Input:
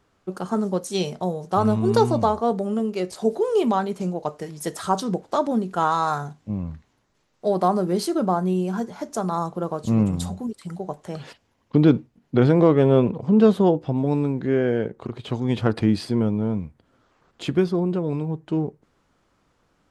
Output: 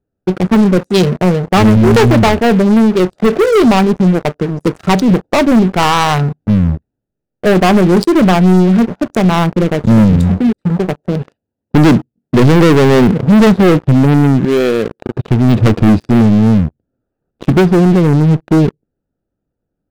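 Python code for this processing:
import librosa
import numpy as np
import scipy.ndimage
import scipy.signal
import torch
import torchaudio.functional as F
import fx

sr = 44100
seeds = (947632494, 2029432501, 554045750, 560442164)

y = fx.highpass(x, sr, hz=100.0, slope=6, at=(10.91, 13.47))
y = fx.tilt_eq(y, sr, slope=4.5, at=(14.45, 15.16))
y = fx.wiener(y, sr, points=41)
y = fx.leveller(y, sr, passes=5)
y = fx.dynamic_eq(y, sr, hz=700.0, q=0.72, threshold_db=-22.0, ratio=4.0, max_db=-4)
y = F.gain(torch.from_numpy(y), 3.0).numpy()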